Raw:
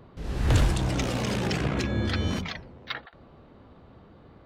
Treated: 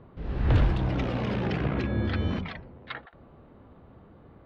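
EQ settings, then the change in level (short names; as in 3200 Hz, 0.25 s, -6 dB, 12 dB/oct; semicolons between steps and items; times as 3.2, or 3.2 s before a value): air absorption 330 m; 0.0 dB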